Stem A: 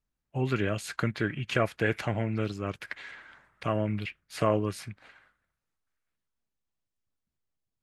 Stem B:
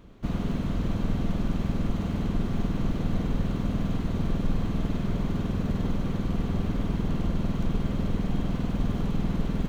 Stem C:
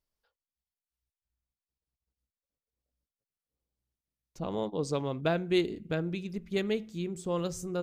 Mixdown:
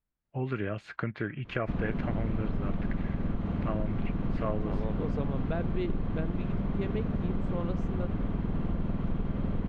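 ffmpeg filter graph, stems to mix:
-filter_complex "[0:a]volume=-2dB[a];[1:a]adelay=1450,volume=0.5dB[b];[2:a]adelay=250,volume=-1dB[c];[a][b][c]amix=inputs=3:normalize=0,lowpass=2.2k,acompressor=threshold=-27dB:ratio=3"

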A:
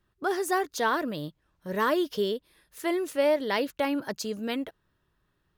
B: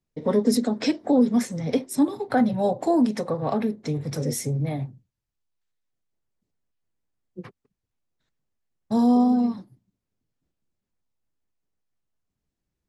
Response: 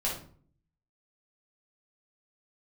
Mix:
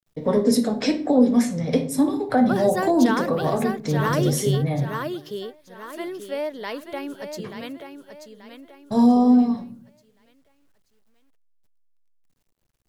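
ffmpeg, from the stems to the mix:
-filter_complex "[0:a]adelay=2250,volume=1.5dB,asplit=2[a][b];[b]volume=-6dB[c];[1:a]volume=-0.5dB,asplit=3[d][e][f];[e]volume=-9dB[g];[f]apad=whole_len=345176[h];[a][h]sidechaingate=range=-33dB:threshold=-39dB:ratio=16:detection=peak[i];[2:a]atrim=start_sample=2205[j];[g][j]afir=irnorm=-1:irlink=0[k];[c]aecho=0:1:883|1766|2649|3532|4415:1|0.37|0.137|0.0507|0.0187[l];[i][d][k][l]amix=inputs=4:normalize=0,acrossover=split=480[m][n];[n]acompressor=threshold=-20dB:ratio=6[o];[m][o]amix=inputs=2:normalize=0,acrusher=bits=11:mix=0:aa=0.000001"

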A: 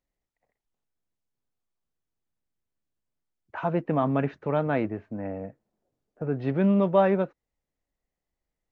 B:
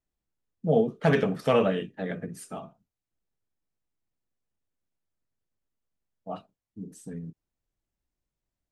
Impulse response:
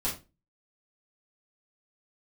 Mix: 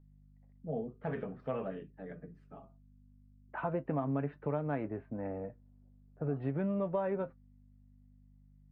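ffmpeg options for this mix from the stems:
-filter_complex "[0:a]aeval=exprs='val(0)+0.002*(sin(2*PI*50*n/s)+sin(2*PI*2*50*n/s)/2+sin(2*PI*3*50*n/s)/3+sin(2*PI*4*50*n/s)/4+sin(2*PI*5*50*n/s)/5)':c=same,volume=0dB[a];[1:a]aemphasis=mode=reproduction:type=75kf,volume=-9dB[b];[a][b]amix=inputs=2:normalize=0,lowpass=2.1k,flanger=delay=6.6:depth=1.8:regen=56:speed=0.45:shape=triangular,acompressor=threshold=-30dB:ratio=6"

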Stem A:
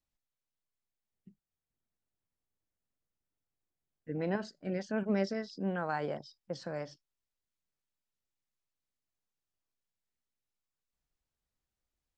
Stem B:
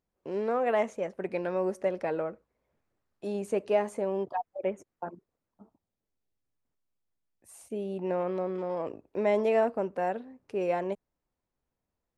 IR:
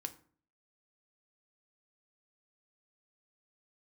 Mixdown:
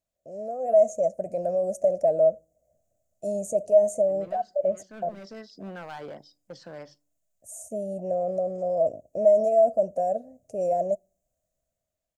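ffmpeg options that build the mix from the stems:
-filter_complex "[0:a]highpass=f=160:p=1,volume=32.5dB,asoftclip=hard,volume=-32.5dB,volume=-3dB,asplit=2[a][b];[b]volume=-12dB[c];[1:a]alimiter=limit=-24dB:level=0:latency=1:release=13,dynaudnorm=f=140:g=9:m=9.5dB,firequalizer=gain_entry='entry(130,0);entry(390,-13);entry(640,15);entry(910,-24);entry(3600,-22);entry(6700,11);entry(9700,4)':delay=0.05:min_phase=1,volume=-6dB,asplit=3[d][e][f];[e]volume=-16.5dB[g];[f]apad=whole_len=536779[h];[a][h]sidechaincompress=threshold=-37dB:ratio=8:attack=16:release=403[i];[2:a]atrim=start_sample=2205[j];[c][g]amix=inputs=2:normalize=0[k];[k][j]afir=irnorm=-1:irlink=0[l];[i][d][l]amix=inputs=3:normalize=0"

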